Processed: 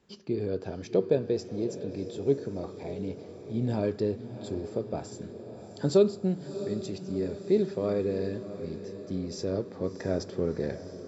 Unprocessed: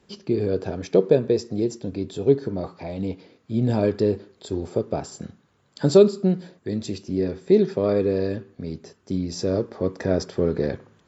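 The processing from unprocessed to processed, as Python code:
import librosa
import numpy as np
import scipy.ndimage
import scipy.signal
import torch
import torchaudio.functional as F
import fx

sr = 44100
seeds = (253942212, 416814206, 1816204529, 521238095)

y = fx.echo_diffused(x, sr, ms=675, feedback_pct=61, wet_db=-12)
y = y * librosa.db_to_amplitude(-7.5)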